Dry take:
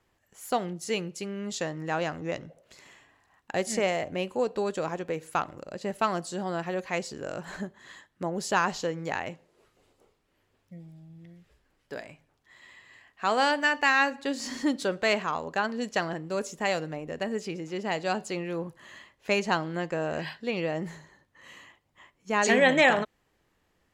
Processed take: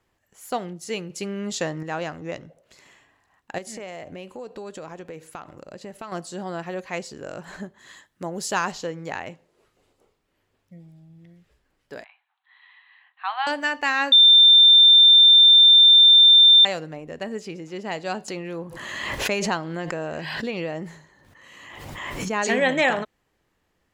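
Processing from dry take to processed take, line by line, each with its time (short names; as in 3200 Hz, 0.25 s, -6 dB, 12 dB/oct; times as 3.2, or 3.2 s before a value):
1.1–1.83 gain +5 dB
3.58–6.12 compressor 4:1, threshold -34 dBFS
7.78–8.72 high shelf 4700 Hz +8 dB
12.04–13.47 Chebyshev band-pass 760–4000 Hz, order 5
14.12–16.65 bleep 3580 Hz -8.5 dBFS
18.28–22.37 backwards sustainer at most 28 dB/s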